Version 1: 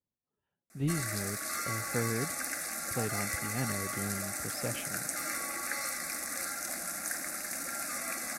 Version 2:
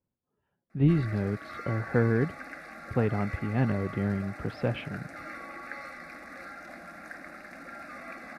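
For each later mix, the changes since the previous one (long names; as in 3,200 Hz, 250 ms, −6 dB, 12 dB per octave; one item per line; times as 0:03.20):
speech +9.5 dB
master: add high-frequency loss of the air 390 metres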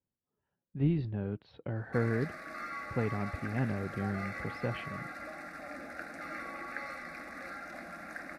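speech −6.0 dB
background: entry +1.05 s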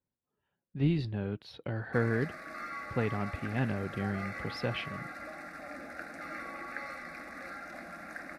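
speech: remove head-to-tape spacing loss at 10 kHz 31 dB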